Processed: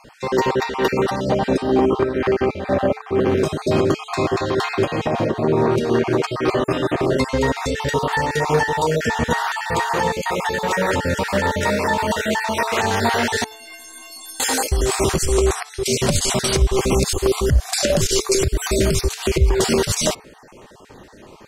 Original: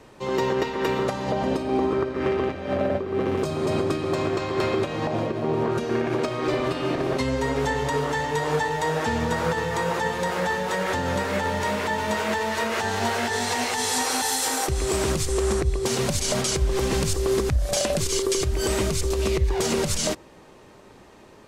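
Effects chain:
time-frequency cells dropped at random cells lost 31%
0:13.44–0:14.40: stiff-string resonator 320 Hz, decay 0.66 s, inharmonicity 0.03
hum removal 436.1 Hz, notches 6
level +7 dB

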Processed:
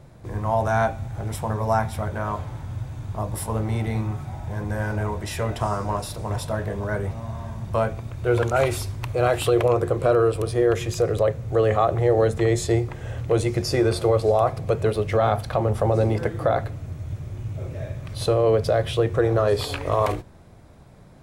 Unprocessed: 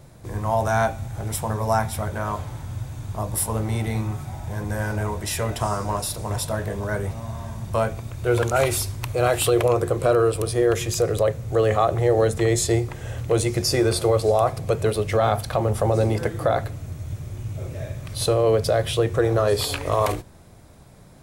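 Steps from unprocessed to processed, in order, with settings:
high-shelf EQ 4,900 Hz −11 dB

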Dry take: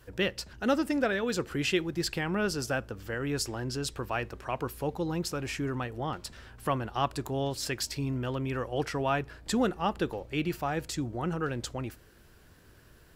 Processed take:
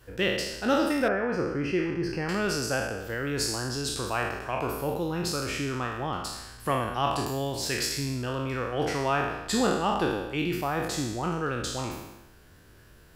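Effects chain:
peak hold with a decay on every bin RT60 1.02 s
0:01.08–0:02.29: moving average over 12 samples

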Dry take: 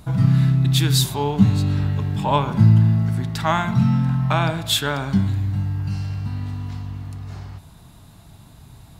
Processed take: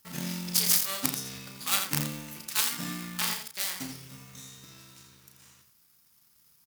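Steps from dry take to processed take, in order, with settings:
gap after every zero crossing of 0.28 ms
power curve on the samples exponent 1.4
in parallel at −8 dB: wrap-around overflow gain 4 dB
on the sum: first-order pre-emphasis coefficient 0.97
on a send: loudspeakers that aren't time-aligned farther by 16 metres −7 dB, 39 metres −8 dB
on the sum: wrong playback speed 33 rpm record played at 45 rpm
level +6 dB

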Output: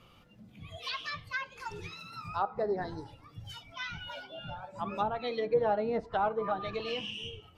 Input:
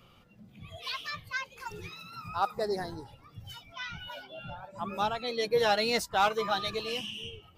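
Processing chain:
tape wow and flutter 23 cents
treble cut that deepens with the level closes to 830 Hz, closed at −25 dBFS
feedback delay network reverb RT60 0.47 s, high-frequency decay 0.65×, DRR 14.5 dB

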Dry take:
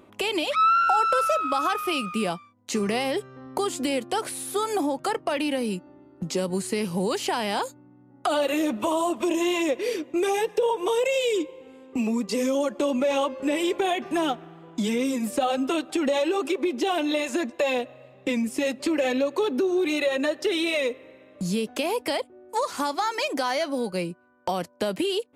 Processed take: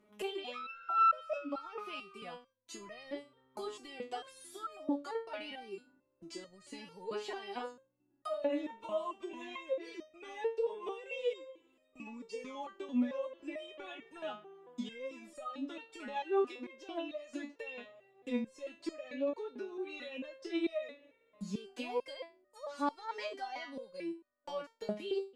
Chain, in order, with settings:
treble cut that deepens with the level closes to 3,000 Hz, closed at −21 dBFS
step-sequenced resonator 4.5 Hz 210–620 Hz

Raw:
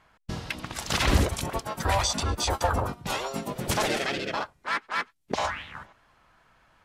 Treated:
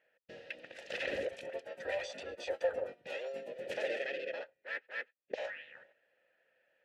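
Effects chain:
formant filter e
low-shelf EQ 150 Hz −6.5 dB
level +1 dB

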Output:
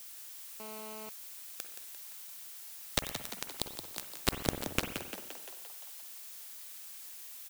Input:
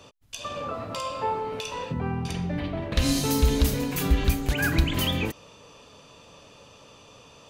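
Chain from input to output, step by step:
0:03.31–0:04.27: low shelf with overshoot 470 Hz −10 dB, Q 3
downward compressor 2.5 to 1, threshold −46 dBFS, peak gain reduction 19.5 dB
bit reduction 5 bits
background noise blue −60 dBFS
echo with shifted repeats 173 ms, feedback 62%, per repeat +84 Hz, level −9 dB
convolution reverb RT60 0.90 s, pre-delay 45 ms, DRR 7.5 dB
0:00.60–0:01.09: phone interference −58 dBFS
level +11.5 dB

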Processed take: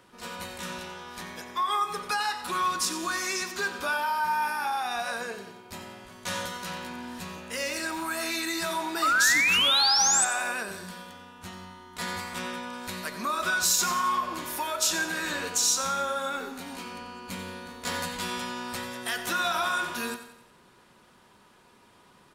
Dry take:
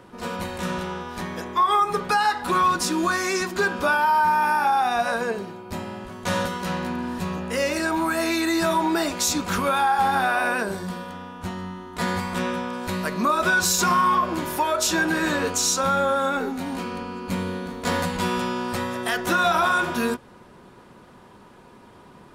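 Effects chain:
0:07.52–0:08.02: bit-depth reduction 10 bits, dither none
tilt shelving filter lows −6 dB, about 1,400 Hz
0:09.02–0:10.25: sound drawn into the spectrogram rise 1,200–8,400 Hz −16 dBFS
repeating echo 90 ms, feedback 49%, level −12.5 dB
on a send at −16 dB: convolution reverb RT60 0.35 s, pre-delay 75 ms
on the sum: level −7 dB

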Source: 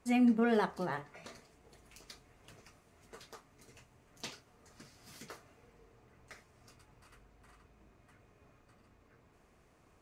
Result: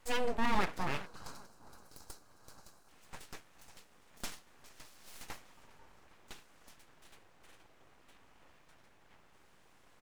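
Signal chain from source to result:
low shelf with overshoot 280 Hz −8.5 dB, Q 1.5
repeating echo 406 ms, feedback 45%, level −22 dB
in parallel at +1 dB: brickwall limiter −28.5 dBFS, peak gain reduction 11 dB
on the sum: full-wave rectification
gain on a spectral selection 0:01.06–0:02.88, 1,700–3,800 Hz −10 dB
level −1.5 dB

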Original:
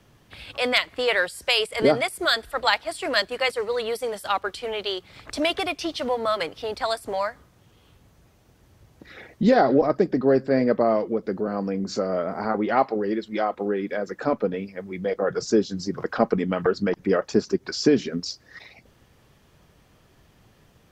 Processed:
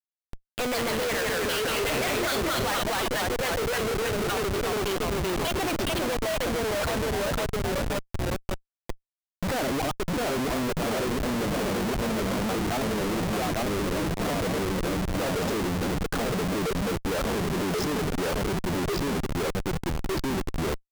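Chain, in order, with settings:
time-frequency cells dropped at random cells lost 24%
delay with pitch and tempo change per echo 94 ms, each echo −1 semitone, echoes 3
on a send: feedback echo with a high-pass in the loop 450 ms, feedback 69%, high-pass 720 Hz, level −23.5 dB
on the sum: comparator with hysteresis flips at −29 dBFS
0:01.72–0:02.79: double-tracking delay 45 ms −8.5 dB
level −3 dB

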